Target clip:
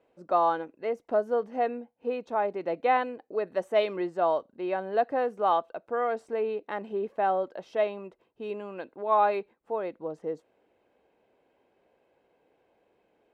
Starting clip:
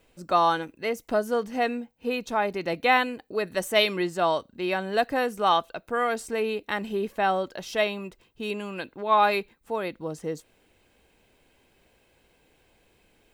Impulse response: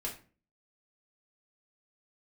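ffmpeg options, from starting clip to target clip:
-af "bandpass=f=580:t=q:w=1:csg=0"

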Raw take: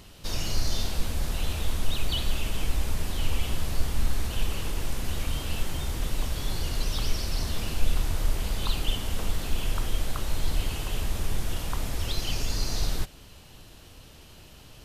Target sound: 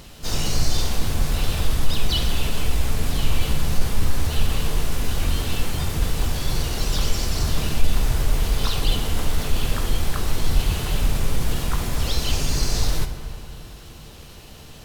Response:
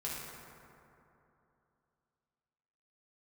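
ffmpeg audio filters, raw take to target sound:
-filter_complex "[0:a]asplit=2[s0][s1];[s1]asetrate=58866,aresample=44100,atempo=0.749154,volume=0.631[s2];[s0][s2]amix=inputs=2:normalize=0,acontrast=33,asplit=2[s3][s4];[1:a]atrim=start_sample=2205[s5];[s4][s5]afir=irnorm=-1:irlink=0,volume=0.531[s6];[s3][s6]amix=inputs=2:normalize=0,volume=0.708"

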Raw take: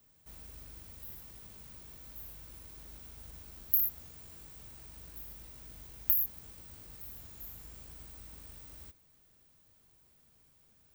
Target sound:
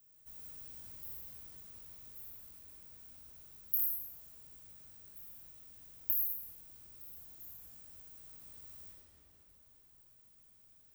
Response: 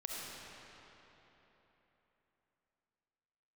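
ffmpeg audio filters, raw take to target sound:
-filter_complex "[0:a]highshelf=f=7000:g=11,dynaudnorm=f=400:g=13:m=3.76[s0];[1:a]atrim=start_sample=2205[s1];[s0][s1]afir=irnorm=-1:irlink=0,volume=0.562"

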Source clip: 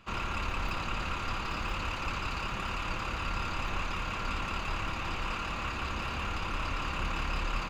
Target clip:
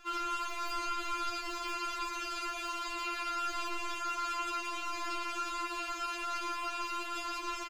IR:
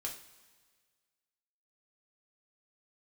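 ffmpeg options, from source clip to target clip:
-filter_complex "[0:a]bass=f=250:g=-7,treble=f=4000:g=9,asplit=2[s0][s1];[s1]adelay=641.4,volume=0.398,highshelf=f=4000:g=-14.4[s2];[s0][s2]amix=inputs=2:normalize=0,asplit=2[s3][s4];[1:a]atrim=start_sample=2205,asetrate=79380,aresample=44100[s5];[s4][s5]afir=irnorm=-1:irlink=0,volume=0.501[s6];[s3][s6]amix=inputs=2:normalize=0,acompressor=threshold=0.0126:ratio=2,afftfilt=real='re*4*eq(mod(b,16),0)':imag='im*4*eq(mod(b,16),0)':win_size=2048:overlap=0.75,volume=1.26"

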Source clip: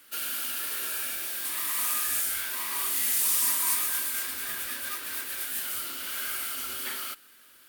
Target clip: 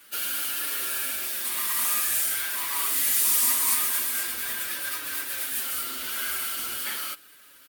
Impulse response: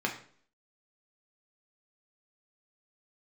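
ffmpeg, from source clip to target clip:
-filter_complex "[0:a]asplit=2[s0][s1];[s1]adelay=6.4,afreqshift=-0.44[s2];[s0][s2]amix=inputs=2:normalize=1,volume=2"

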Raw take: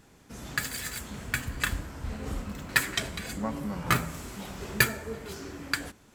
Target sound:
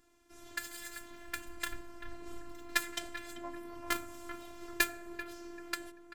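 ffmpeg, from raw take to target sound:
-filter_complex "[0:a]afftfilt=real='hypot(re,im)*cos(PI*b)':imag='0':win_size=512:overlap=0.75,asplit=2[s0][s1];[s1]adelay=389,lowpass=f=2000:p=1,volume=0.376,asplit=2[s2][s3];[s3]adelay=389,lowpass=f=2000:p=1,volume=0.39,asplit=2[s4][s5];[s5]adelay=389,lowpass=f=2000:p=1,volume=0.39,asplit=2[s6][s7];[s7]adelay=389,lowpass=f=2000:p=1,volume=0.39[s8];[s0][s2][s4][s6][s8]amix=inputs=5:normalize=0,aeval=exprs='0.794*(cos(1*acos(clip(val(0)/0.794,-1,1)))-cos(1*PI/2))+0.0447*(cos(7*acos(clip(val(0)/0.794,-1,1)))-cos(7*PI/2))':c=same,volume=0.708"

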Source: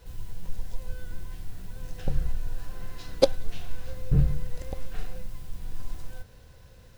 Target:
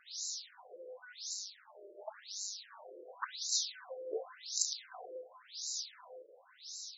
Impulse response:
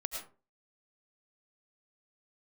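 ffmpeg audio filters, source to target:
-filter_complex "[0:a]aexciter=amount=10.2:drive=6.9:freq=4200,asettb=1/sr,asplit=3[s0][s1][s2];[s0]atrim=end=1.334[s3];[s1]atrim=start=1.33:end=2.85,asetpts=PTS-STARTPTS,afade=t=in:d=0.004:c=qsin,afade=t=out:st=1.516:d=0.004:c=qsin,aeval=exprs='val(0)*sin(2*PI*100*n/s)':c=same[s4];[s2]atrim=start=2.846[s5];[s3][s4]acrossfade=d=0.004:c1=hsin:c2=qsin[s6];[s6][s5]acrossfade=d=0.004:c1=qsin:c2=hsin,afftfilt=real='re*between(b*sr/1024,440*pow(5400/440,0.5+0.5*sin(2*PI*0.92*pts/sr))/1.41,440*pow(5400/440,0.5+0.5*sin(2*PI*0.92*pts/sr))*1.41)':imag='im*between(b*sr/1024,440*pow(5400/440,0.5+0.5*sin(2*PI*0.92*pts/sr))/1.41,440*pow(5400/440,0.5+0.5*sin(2*PI*0.92*pts/sr))*1.41)':win_size=1024:overlap=0.75,volume=1.58"

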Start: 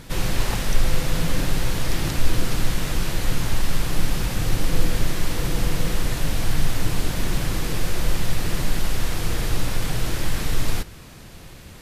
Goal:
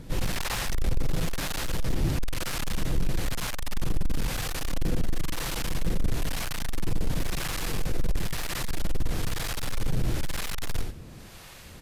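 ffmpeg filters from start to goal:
-filter_complex "[0:a]aecho=1:1:87:0.398,asoftclip=type=hard:threshold=0.126,acrossover=split=600[s0][s1];[s0]aeval=exprs='val(0)*(1-0.7/2+0.7/2*cos(2*PI*1*n/s))':c=same[s2];[s1]aeval=exprs='val(0)*(1-0.7/2-0.7/2*cos(2*PI*1*n/s))':c=same[s3];[s2][s3]amix=inputs=2:normalize=0"

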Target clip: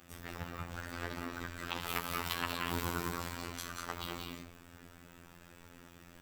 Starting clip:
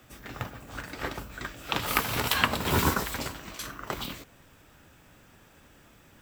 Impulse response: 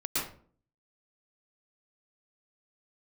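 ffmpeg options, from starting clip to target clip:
-filter_complex "[0:a]asplit=2[s0][s1];[1:a]atrim=start_sample=2205,adelay=71[s2];[s1][s2]afir=irnorm=-1:irlink=0,volume=0.376[s3];[s0][s3]amix=inputs=2:normalize=0,aeval=exprs='val(0)*sin(2*PI*23*n/s)':c=same,acompressor=threshold=0.00794:ratio=2,afftfilt=real='hypot(re,im)*cos(PI*b)':imag='0':win_size=2048:overlap=0.75,volume=1.58"

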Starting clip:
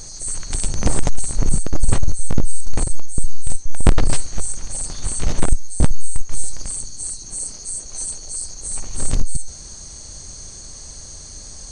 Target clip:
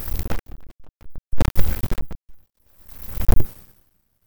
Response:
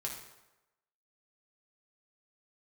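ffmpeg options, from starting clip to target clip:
-af "bandreject=f=50:t=h:w=6,bandreject=f=100:t=h:w=6,bandreject=f=150:t=h:w=6,asoftclip=type=hard:threshold=0.398,asetrate=121275,aresample=44100,aeval=exprs='max(val(0),0)':c=same,aeval=exprs='val(0)*pow(10,-34*(0.5-0.5*cos(2*PI*0.61*n/s))/20)':c=same,volume=2.11"

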